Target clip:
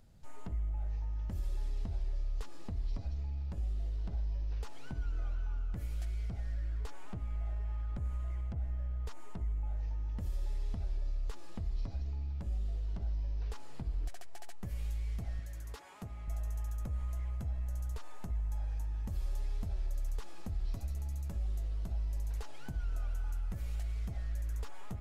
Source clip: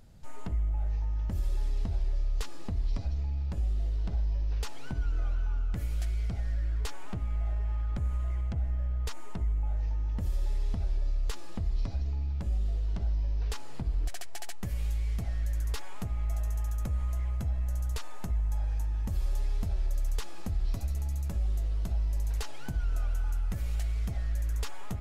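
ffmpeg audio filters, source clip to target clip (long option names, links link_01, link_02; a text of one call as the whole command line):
ffmpeg -i in.wav -filter_complex "[0:a]asettb=1/sr,asplit=3[link_01][link_02][link_03];[link_01]atrim=end=15.394[link_04];[link_02]atrim=start=15.39:end=16.28,asetpts=PTS-STARTPTS,afade=type=in:duration=0.004:curve=qsin,afade=type=out:start_time=0.886:duration=0.004:curve=qsin,highpass=frequency=110:poles=1[link_05];[link_03]atrim=start=16.276[link_06];[link_04][link_05]acrossfade=duration=0.004:curve1=hsin:curve2=qsin[link_07];[link_07][link_06]acrossfade=duration=0.004:curve1=qsin:curve2=hsin,acrossover=split=1400[link_08][link_09];[link_09]alimiter=level_in=15dB:limit=-24dB:level=0:latency=1:release=111,volume=-15dB[link_10];[link_08][link_10]amix=inputs=2:normalize=0,volume=-6dB" out.wav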